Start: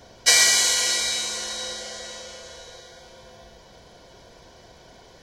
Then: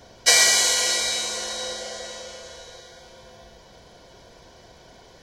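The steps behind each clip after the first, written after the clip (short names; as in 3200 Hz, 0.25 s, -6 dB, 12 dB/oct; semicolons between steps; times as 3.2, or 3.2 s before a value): dynamic EQ 590 Hz, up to +5 dB, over -44 dBFS, Q 1.1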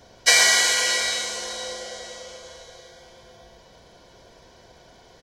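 speakerphone echo 0.11 s, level -6 dB; dynamic EQ 1900 Hz, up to +6 dB, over -33 dBFS, Q 0.78; gain -2.5 dB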